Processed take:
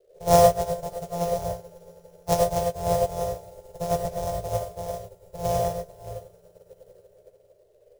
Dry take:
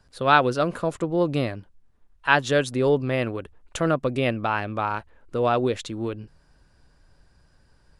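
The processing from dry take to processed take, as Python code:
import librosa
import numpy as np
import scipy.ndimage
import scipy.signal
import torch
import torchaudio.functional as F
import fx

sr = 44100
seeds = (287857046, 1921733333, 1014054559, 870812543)

p1 = np.r_[np.sort(x[:len(x) // 256 * 256].reshape(-1, 256), axis=1).ravel(), x[len(x) // 256 * 256:]]
p2 = fx.curve_eq(p1, sr, hz=(110.0, 160.0, 230.0, 340.0, 620.0, 1400.0, 2900.0, 5700.0), db=(0, -5, -23, -22, 7, -24, -24, -8))
p3 = fx.echo_swell(p2, sr, ms=111, loudest=5, wet_db=-17.5)
p4 = 10.0 ** (-20.0 / 20.0) * np.tanh(p3 / 10.0 ** (-20.0 / 20.0))
p5 = p3 + F.gain(torch.from_numpy(p4), -7.5).numpy()
p6 = fx.dmg_noise_band(p5, sr, seeds[0], low_hz=390.0, high_hz=600.0, level_db=-39.0)
p7 = fx.quant_float(p6, sr, bits=2)
p8 = fx.rev_gated(p7, sr, seeds[1], gate_ms=120, shape='rising', drr_db=0.0)
p9 = fx.upward_expand(p8, sr, threshold_db=-36.0, expansion=2.5)
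y = F.gain(torch.from_numpy(p9), 5.0).numpy()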